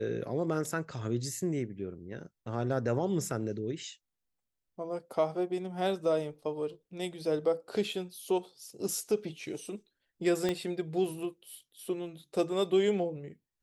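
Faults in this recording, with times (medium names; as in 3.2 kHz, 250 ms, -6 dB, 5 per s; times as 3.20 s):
10.49 s: pop -17 dBFS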